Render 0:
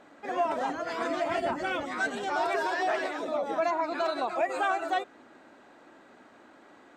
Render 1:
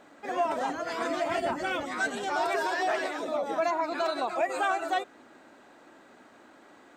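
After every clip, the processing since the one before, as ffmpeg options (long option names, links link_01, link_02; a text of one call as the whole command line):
ffmpeg -i in.wav -af "highshelf=frequency=6500:gain=7.5" out.wav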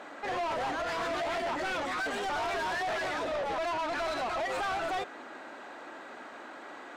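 ffmpeg -i in.wav -filter_complex "[0:a]asplit=2[link_01][link_02];[link_02]highpass=frequency=720:poles=1,volume=26dB,asoftclip=type=tanh:threshold=-16.5dB[link_03];[link_01][link_03]amix=inputs=2:normalize=0,lowpass=frequency=2600:poles=1,volume=-6dB,asoftclip=type=tanh:threshold=-21dB,volume=-7dB" out.wav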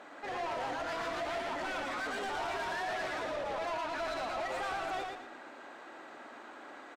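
ffmpeg -i in.wav -af "aecho=1:1:114|228|342|456:0.631|0.202|0.0646|0.0207,volume=-5.5dB" out.wav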